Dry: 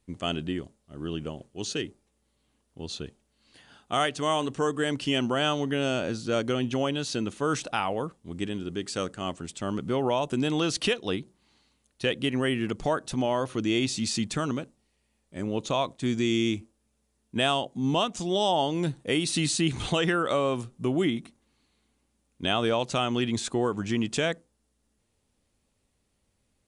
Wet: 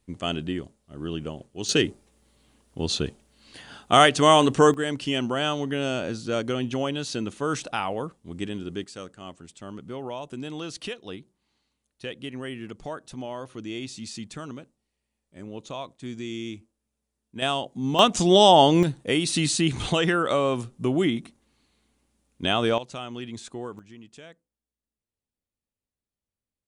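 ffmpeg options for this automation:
ffmpeg -i in.wav -af "asetnsamples=nb_out_samples=441:pad=0,asendcmd='1.69 volume volume 10dB;4.74 volume volume 0dB;8.84 volume volume -8.5dB;17.42 volume volume -0.5dB;17.99 volume volume 10dB;18.83 volume volume 2.5dB;22.78 volume volume -9dB;23.79 volume volume -19.5dB',volume=1.5dB" out.wav

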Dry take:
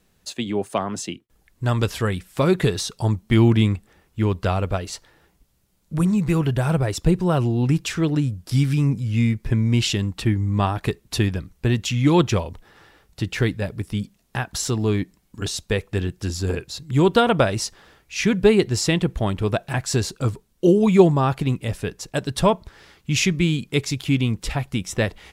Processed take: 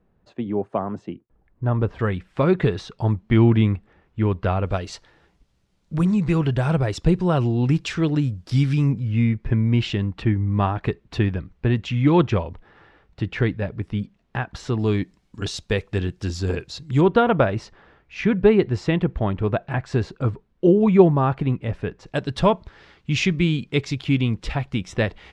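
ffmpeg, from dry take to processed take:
ffmpeg -i in.wav -af "asetnsamples=nb_out_samples=441:pad=0,asendcmd='1.99 lowpass f 2400;4.66 lowpass f 5000;8.92 lowpass f 2500;14.79 lowpass f 5300;17.01 lowpass f 2100;22.06 lowpass f 3900',lowpass=1100" out.wav

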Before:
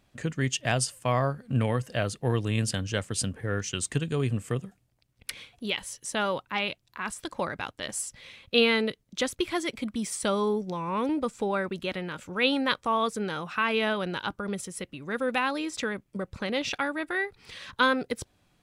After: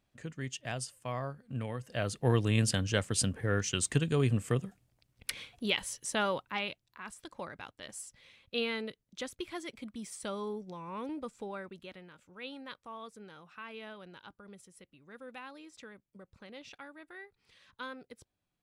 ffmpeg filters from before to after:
ffmpeg -i in.wav -af "volume=-0.5dB,afade=type=in:start_time=1.81:duration=0.48:silence=0.281838,afade=type=out:start_time=5.85:duration=1.14:silence=0.281838,afade=type=out:start_time=11.28:duration=0.88:silence=0.398107" out.wav

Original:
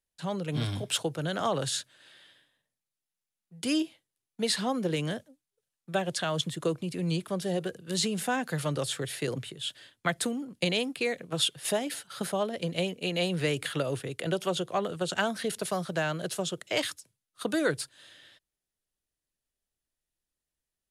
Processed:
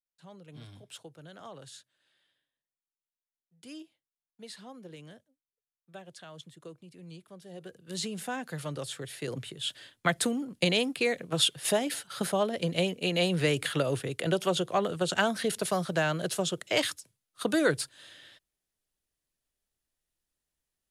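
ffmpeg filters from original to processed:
ffmpeg -i in.wav -af "volume=2dB,afade=type=in:start_time=7.49:duration=0.49:silence=0.266073,afade=type=in:start_time=9.17:duration=0.58:silence=0.398107" out.wav

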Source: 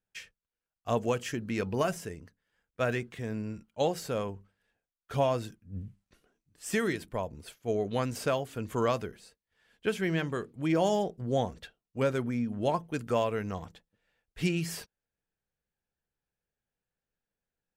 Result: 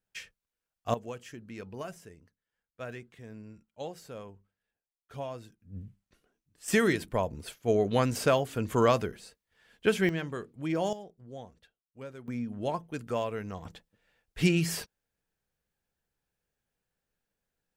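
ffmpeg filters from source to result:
ffmpeg -i in.wav -af "asetnsamples=nb_out_samples=441:pad=0,asendcmd='0.94 volume volume -11dB;5.6 volume volume -3dB;6.68 volume volume 4.5dB;10.09 volume volume -3.5dB;10.93 volume volume -15.5dB;12.28 volume volume -3.5dB;13.65 volume volume 4.5dB',volume=1.5dB" out.wav

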